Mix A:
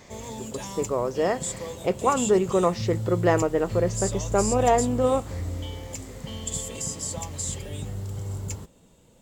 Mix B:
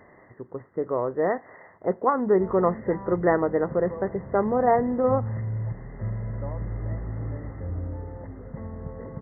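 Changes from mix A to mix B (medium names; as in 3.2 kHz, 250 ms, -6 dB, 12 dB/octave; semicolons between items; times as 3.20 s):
background: entry +2.30 s; master: add brick-wall FIR low-pass 2.1 kHz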